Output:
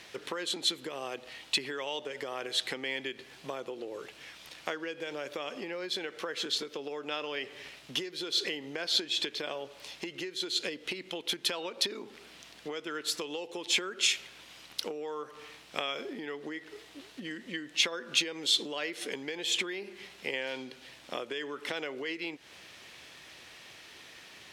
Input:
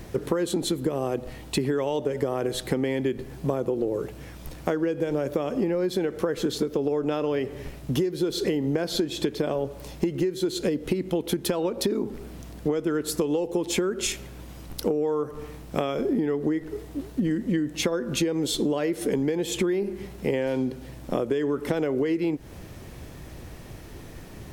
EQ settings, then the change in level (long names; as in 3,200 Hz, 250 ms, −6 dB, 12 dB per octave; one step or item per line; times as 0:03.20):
resonant band-pass 3,200 Hz, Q 1.2
+5.5 dB